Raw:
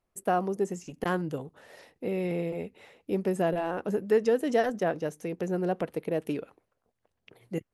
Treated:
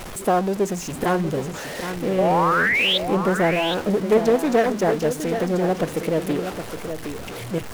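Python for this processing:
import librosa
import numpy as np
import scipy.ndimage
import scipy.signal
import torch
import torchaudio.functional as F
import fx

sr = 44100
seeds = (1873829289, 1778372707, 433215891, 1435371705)

y = x + 0.5 * 10.0 ** (-33.5 / 20.0) * np.sign(x)
y = fx.spec_paint(y, sr, seeds[0], shape='rise', start_s=2.18, length_s=0.8, low_hz=540.0, high_hz=3700.0, level_db=-25.0)
y = y + 10.0 ** (-8.5 / 20.0) * np.pad(y, (int(767 * sr / 1000.0), 0))[:len(y)]
y = fx.doppler_dist(y, sr, depth_ms=0.37)
y = F.gain(torch.from_numpy(y), 5.5).numpy()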